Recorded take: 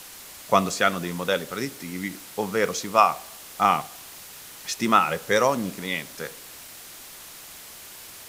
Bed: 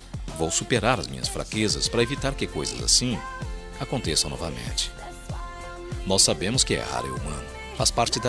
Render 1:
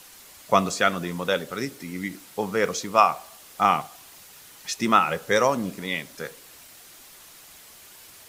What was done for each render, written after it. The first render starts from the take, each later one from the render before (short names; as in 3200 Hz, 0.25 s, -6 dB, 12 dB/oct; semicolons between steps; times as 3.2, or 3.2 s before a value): denoiser 6 dB, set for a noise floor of -43 dBFS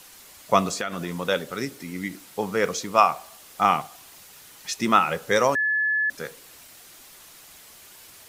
0.74–1.16 compressor, threshold -24 dBFS; 5.55–6.1 bleep 1720 Hz -20 dBFS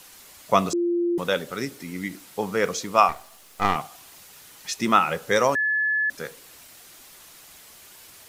0.73–1.18 bleep 346 Hz -20 dBFS; 3.09–3.76 half-wave gain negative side -12 dB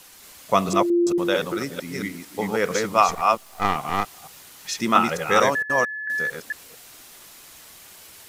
reverse delay 0.225 s, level -2 dB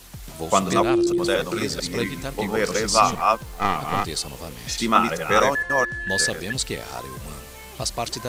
add bed -5 dB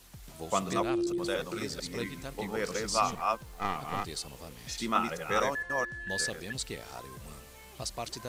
gain -10.5 dB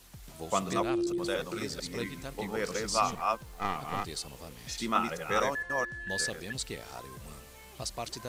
nothing audible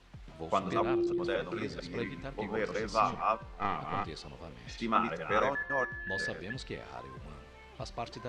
LPF 3000 Hz 12 dB/oct; de-hum 193.5 Hz, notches 32